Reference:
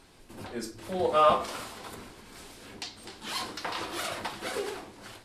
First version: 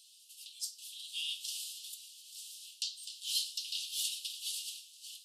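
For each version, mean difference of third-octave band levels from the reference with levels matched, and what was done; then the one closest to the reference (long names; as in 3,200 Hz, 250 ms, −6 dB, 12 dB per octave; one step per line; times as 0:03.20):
23.0 dB: Butterworth high-pass 2,800 Hz 96 dB per octave
high-shelf EQ 4,000 Hz +5.5 dB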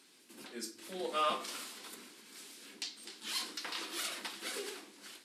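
6.0 dB: high-pass filter 250 Hz 24 dB per octave
parametric band 700 Hz −15 dB 2.2 octaves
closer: second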